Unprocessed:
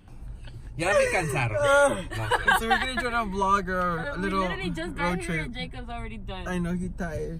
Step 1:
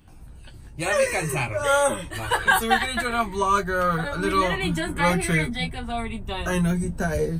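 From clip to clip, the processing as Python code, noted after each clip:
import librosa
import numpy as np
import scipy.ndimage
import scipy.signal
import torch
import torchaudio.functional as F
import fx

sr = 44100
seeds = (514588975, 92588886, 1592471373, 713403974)

y = fx.high_shelf(x, sr, hz=6700.0, db=8.5)
y = fx.rider(y, sr, range_db=4, speed_s=2.0)
y = fx.room_early_taps(y, sr, ms=(13, 30), db=(-5.5, -13.0))
y = y * 10.0 ** (1.5 / 20.0)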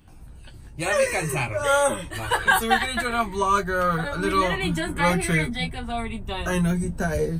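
y = x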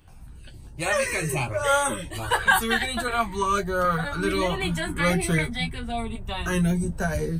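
y = fx.filter_lfo_notch(x, sr, shape='saw_up', hz=1.3, low_hz=200.0, high_hz=2600.0, q=1.7)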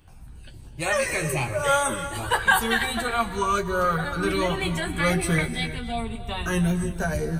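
y = fx.rev_gated(x, sr, seeds[0], gate_ms=360, shape='rising', drr_db=11.0)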